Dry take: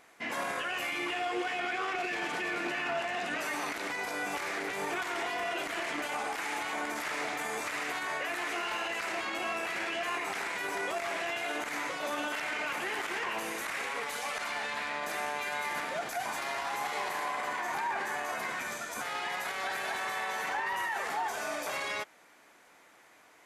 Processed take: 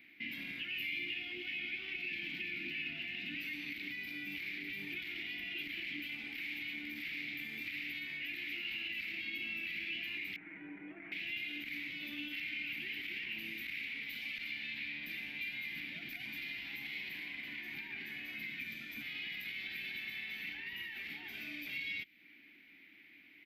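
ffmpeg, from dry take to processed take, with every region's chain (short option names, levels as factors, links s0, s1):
-filter_complex "[0:a]asettb=1/sr,asplit=3[s0][s1][s2];[s0]atrim=end=10.364[s3];[s1]atrim=start=10.36:end=11.12,asetpts=PTS-STARTPTS,afade=t=in:d=0.004:c=qsin,afade=t=out:st=0.756:d=0.004:c=qsin,lowpass=f=1400:w=0.5412,lowpass=f=1400:w=1.3066,lowshelf=f=190:g=-10,aecho=1:1:6.4:0.75,atrim=end_sample=33516[s4];[s2]atrim=start=11.116[s5];[s3][s4]acrossfade=d=0.004:c1=hsin:c2=qsin[s6];[s6][s5]acrossfade=d=0.004:c1=qsin:c2=hsin,firequalizer=gain_entry='entry(110,0);entry(290,8);entry(480,-18);entry(770,-19);entry(1100,-22);entry(2200,11);entry(4500,-5);entry(6500,-25);entry(9800,-27);entry(14000,5)':delay=0.05:min_phase=1,acrossover=split=180|3000[s7][s8][s9];[s8]acompressor=threshold=0.00562:ratio=6[s10];[s7][s10][s9]amix=inputs=3:normalize=0,volume=0.708"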